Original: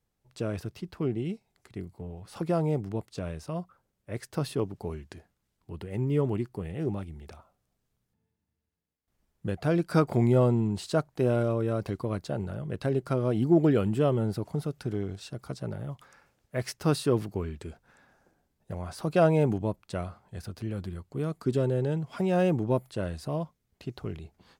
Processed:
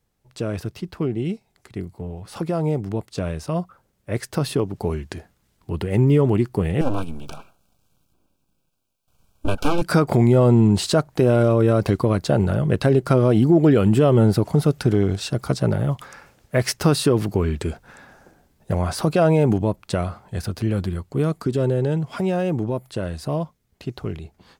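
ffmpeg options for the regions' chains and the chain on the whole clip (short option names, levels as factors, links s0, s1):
-filter_complex "[0:a]asettb=1/sr,asplit=3[s0][s1][s2];[s0]atrim=end=6.814[s3];[s1]atrim=start=6.81:end=9.82,asetpts=PTS-STARTPTS,afade=t=in:d=0.004:c=qsin,afade=t=out:st=3.006:d=0.004:c=qsin,equalizer=f=300:t=o:w=0.54:g=-14.5,aeval=exprs='abs(val(0))':c=same,asuperstop=centerf=1900:order=20:qfactor=2.9[s4];[s2]atrim=start=9.816[s5];[s3][s4]acrossfade=d=0.004:c1=hsin:c2=qsin[s6];[s6][s5]acrossfade=d=0.004:c1=qsin:c2=hsin,alimiter=limit=0.075:level=0:latency=1:release=177,dynaudnorm=f=550:g=17:m=2.37,volume=2.37"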